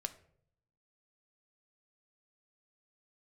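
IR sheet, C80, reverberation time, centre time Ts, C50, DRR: 18.5 dB, 0.65 s, 5 ms, 15.5 dB, 8.5 dB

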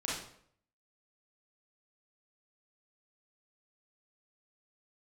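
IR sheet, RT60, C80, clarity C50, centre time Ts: 0.65 s, 6.0 dB, 1.0 dB, 54 ms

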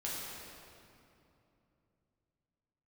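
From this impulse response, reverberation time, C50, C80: 2.9 s, -2.5 dB, -0.5 dB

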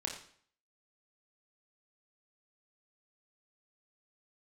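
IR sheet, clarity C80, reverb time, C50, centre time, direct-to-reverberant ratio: 9.5 dB, 0.55 s, 6.5 dB, 27 ms, 0.0 dB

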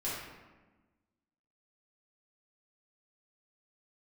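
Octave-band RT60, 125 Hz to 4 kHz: 1.5, 1.7, 1.3, 1.2, 1.1, 0.75 s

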